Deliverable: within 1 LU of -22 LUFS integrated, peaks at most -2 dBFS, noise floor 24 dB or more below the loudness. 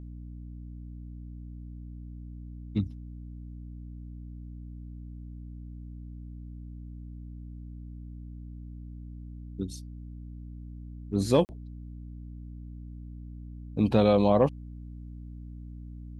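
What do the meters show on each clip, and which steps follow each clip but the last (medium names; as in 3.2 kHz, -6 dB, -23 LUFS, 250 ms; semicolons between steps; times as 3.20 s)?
dropouts 1; longest dropout 39 ms; hum 60 Hz; highest harmonic 300 Hz; hum level -39 dBFS; loudness -27.0 LUFS; peak level -9.0 dBFS; loudness target -22.0 LUFS
-> interpolate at 11.45 s, 39 ms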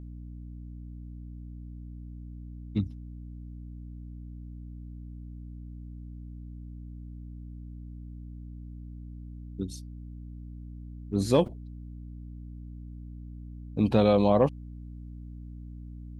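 dropouts 0; hum 60 Hz; highest harmonic 300 Hz; hum level -39 dBFS
-> de-hum 60 Hz, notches 5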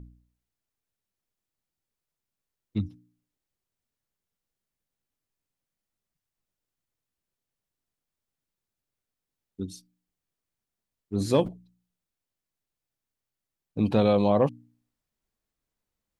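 hum not found; loudness -26.0 LUFS; peak level -9.0 dBFS; loudness target -22.0 LUFS
-> trim +4 dB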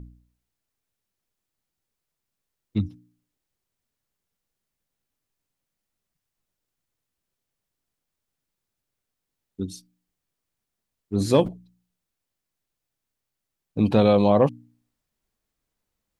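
loudness -22.0 LUFS; peak level -5.0 dBFS; noise floor -84 dBFS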